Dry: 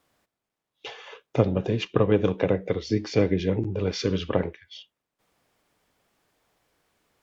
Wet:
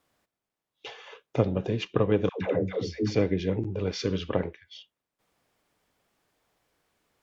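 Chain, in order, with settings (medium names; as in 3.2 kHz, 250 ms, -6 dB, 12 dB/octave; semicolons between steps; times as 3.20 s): 2.29–3.15 s: phase dispersion lows, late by 124 ms, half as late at 520 Hz; trim -3 dB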